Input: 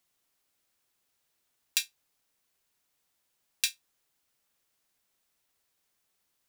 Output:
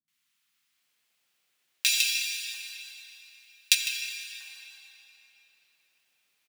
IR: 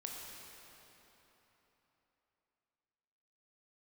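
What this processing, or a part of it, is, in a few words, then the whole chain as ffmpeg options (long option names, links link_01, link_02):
PA in a hall: -filter_complex "[0:a]highpass=frequency=120:width=0.5412,highpass=frequency=120:width=1.3066,equalizer=frequency=2500:width_type=o:width=1.8:gain=7.5,aecho=1:1:154:0.422[link_01];[1:a]atrim=start_sample=2205[link_02];[link_01][link_02]afir=irnorm=-1:irlink=0,asettb=1/sr,asplit=3[link_03][link_04][link_05];[link_03]atrim=end=1.784[link_06];[link_04]atrim=start=1.78:end=3.67,asetpts=PTS-STARTPTS,afade=type=in:duration=0.004:curve=qsin,afade=type=out:start_time=1.886:duration=0.004:curve=qsin,tiltshelf=frequency=1300:gain=-8[link_07];[link_05]atrim=start=3.666[link_08];[link_06][link_07]acrossfade=duration=0.004:curve1=hsin:curve2=qsin[link_09];[link_09][link_08]acrossfade=duration=0.004:curve1=qsin:curve2=hsin,acrossover=split=280|1000[link_10][link_11][link_12];[link_12]adelay=80[link_13];[link_11]adelay=770[link_14];[link_10][link_14][link_13]amix=inputs=3:normalize=0,volume=1.5dB"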